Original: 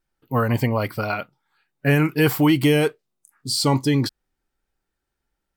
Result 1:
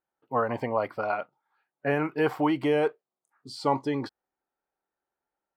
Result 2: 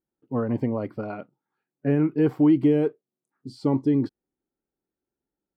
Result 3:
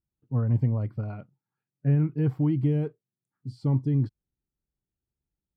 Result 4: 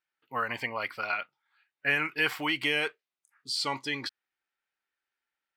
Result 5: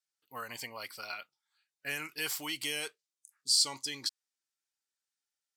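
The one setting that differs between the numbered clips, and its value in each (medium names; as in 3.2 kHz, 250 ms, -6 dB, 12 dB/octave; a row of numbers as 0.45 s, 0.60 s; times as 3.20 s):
band-pass filter, frequency: 760 Hz, 300 Hz, 110 Hz, 2.2 kHz, 6.4 kHz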